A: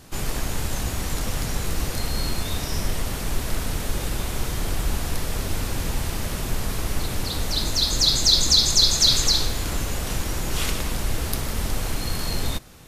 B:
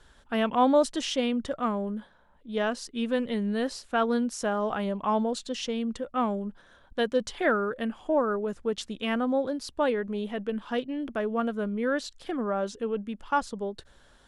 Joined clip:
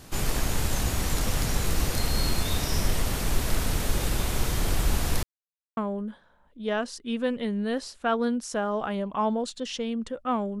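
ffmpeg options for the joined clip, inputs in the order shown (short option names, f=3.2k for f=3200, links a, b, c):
-filter_complex "[0:a]apad=whole_dur=10.6,atrim=end=10.6,asplit=2[a][b];[a]atrim=end=5.23,asetpts=PTS-STARTPTS,afade=t=out:st=5.226:d=0.004:c=hsin[c];[b]atrim=start=5.23:end=5.77,asetpts=PTS-STARTPTS,volume=0[d];[1:a]atrim=start=1.66:end=6.49,asetpts=PTS-STARTPTS,afade=t=in:d=0.004:c=hsin[e];[c][d][e]concat=n=3:v=0:a=1"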